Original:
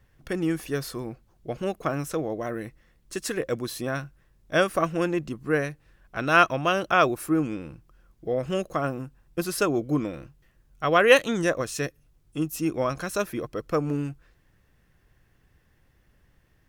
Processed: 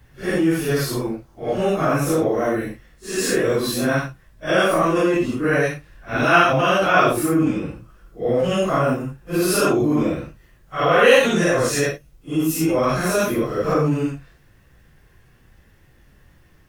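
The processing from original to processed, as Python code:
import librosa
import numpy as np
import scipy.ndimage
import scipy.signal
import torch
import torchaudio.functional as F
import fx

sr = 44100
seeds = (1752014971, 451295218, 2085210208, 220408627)

p1 = fx.phase_scramble(x, sr, seeds[0], window_ms=200)
p2 = fx.over_compress(p1, sr, threshold_db=-28.0, ratio=-1.0)
p3 = p1 + F.gain(torch.from_numpy(p2), -2.0).numpy()
y = F.gain(torch.from_numpy(p3), 3.5).numpy()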